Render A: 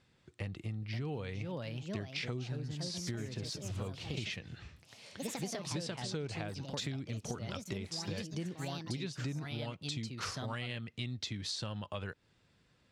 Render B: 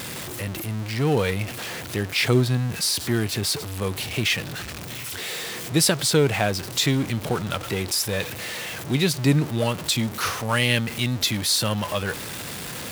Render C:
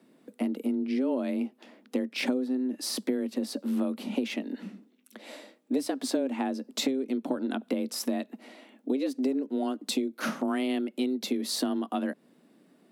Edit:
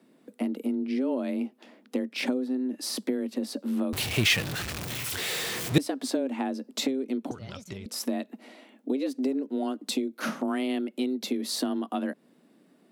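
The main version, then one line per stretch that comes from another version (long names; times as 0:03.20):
C
0:03.93–0:05.78: punch in from B
0:07.31–0:07.86: punch in from A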